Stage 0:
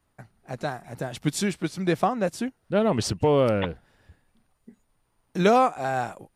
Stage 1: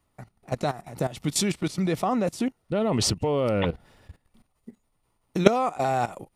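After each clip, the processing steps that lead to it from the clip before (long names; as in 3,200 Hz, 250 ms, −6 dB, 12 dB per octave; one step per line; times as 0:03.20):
output level in coarse steps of 16 dB
notch filter 1,600 Hz, Q 6.3
level +8.5 dB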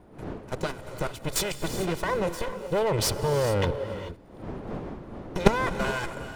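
lower of the sound and its delayed copy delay 2 ms
wind on the microphone 430 Hz −41 dBFS
reverb whose tail is shaped and stops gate 460 ms rising, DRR 9.5 dB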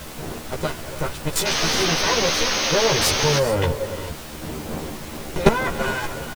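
background noise pink −40 dBFS
sound drawn into the spectrogram noise, 0:01.45–0:03.39, 210–6,600 Hz −27 dBFS
double-tracking delay 13 ms −3 dB
level +2.5 dB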